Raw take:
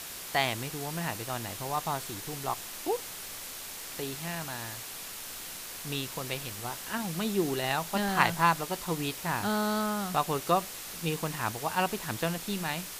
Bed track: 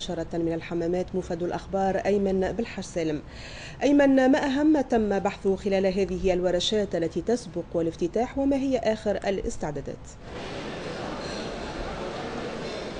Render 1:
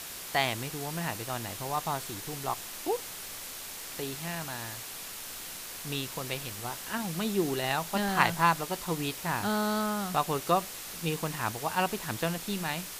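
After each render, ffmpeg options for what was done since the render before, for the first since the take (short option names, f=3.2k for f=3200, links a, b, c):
-af anull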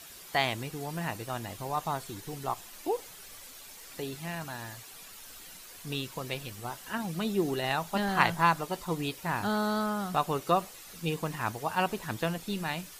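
-af "afftdn=nr=10:nf=-42"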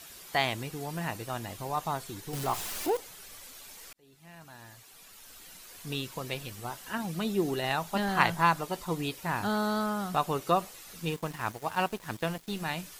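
-filter_complex "[0:a]asettb=1/sr,asplit=3[a][b][c];[a]atrim=end=2.334[d];[b]atrim=start=2.33:end=2.97,asetpts=PTS-STARTPTS,afade=t=in:d=0.004:c=qsin,afade=t=out:st=0.636:d=0.004:c=qsin,aeval=exprs='val(0)+0.5*0.0224*sgn(val(0))':c=same[e];[c]atrim=start=2.966[f];[d][e]acrossfade=d=0.004:c1=hsin:c2=qsin[g];[g][f]acrossfade=d=0.004:c1=qsin:c2=hsin,asettb=1/sr,asplit=3[h][i][j];[h]atrim=end=11.054[k];[i]atrim=start=11.05:end=12.62,asetpts=PTS-STARTPTS,afade=t=in:d=0.004:c=qsin,afade=t=out:st=1.566:d=0.004:c=qsin,aeval=exprs='sgn(val(0))*max(abs(val(0))-0.00596,0)':c=same[l];[j]atrim=start=12.616[m];[k][l]acrossfade=d=0.004:c1=hsin:c2=qsin[n];[n][m]acrossfade=d=0.004:c1=qsin:c2=hsin,asplit=2[o][p];[o]atrim=end=3.93,asetpts=PTS-STARTPTS,afade=t=out:st=3.926:d=0.004:c=hsin[q];[p]atrim=start=3.93,asetpts=PTS-STARTPTS,afade=t=in:d=1.94[r];[q][r]concat=n=2:v=0:a=1"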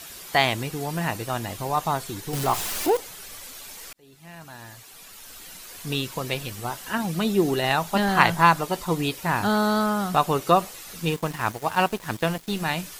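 -af "volume=7.5dB,alimiter=limit=-2dB:level=0:latency=1"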